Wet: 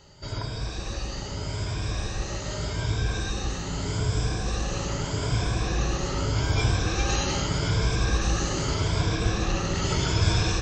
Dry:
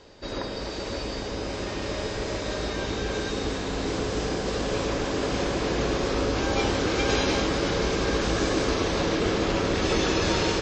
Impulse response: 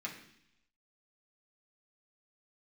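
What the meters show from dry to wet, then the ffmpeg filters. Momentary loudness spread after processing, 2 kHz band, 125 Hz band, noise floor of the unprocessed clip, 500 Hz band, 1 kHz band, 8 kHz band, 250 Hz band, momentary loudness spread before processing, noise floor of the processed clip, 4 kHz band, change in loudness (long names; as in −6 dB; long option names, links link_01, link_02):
8 LU, −3.0 dB, +7.0 dB, −33 dBFS, −7.5 dB, −3.0 dB, +2.5 dB, −4.5 dB, 8 LU, −34 dBFS, −1.5 dB, −0.5 dB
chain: -af "afftfilt=real='re*pow(10,10/40*sin(2*PI*(1.7*log(max(b,1)*sr/1024/100)/log(2)-(0.82)*(pts-256)/sr)))':imag='im*pow(10,10/40*sin(2*PI*(1.7*log(max(b,1)*sr/1024/100)/log(2)-(0.82)*(pts-256)/sr)))':win_size=1024:overlap=0.75,equalizer=frequency=125:width_type=o:width=1:gain=6,equalizer=frequency=250:width_type=o:width=1:gain=-11,equalizer=frequency=500:width_type=o:width=1:gain=-11,equalizer=frequency=1000:width_type=o:width=1:gain=-4,equalizer=frequency=2000:width_type=o:width=1:gain=-7,equalizer=frequency=4000:width_type=o:width=1:gain=-6,volume=4dB"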